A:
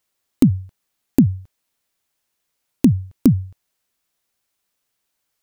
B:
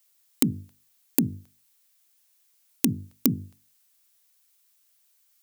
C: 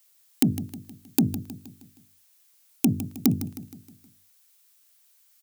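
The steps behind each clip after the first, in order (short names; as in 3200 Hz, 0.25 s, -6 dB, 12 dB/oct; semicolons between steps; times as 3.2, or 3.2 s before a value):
tilt +3.5 dB/oct; notches 50/100/150/200/250/300/350/400/450 Hz; gain -2.5 dB
soft clip -14.5 dBFS, distortion -10 dB; feedback echo 0.157 s, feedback 49%, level -13 dB; gain +4 dB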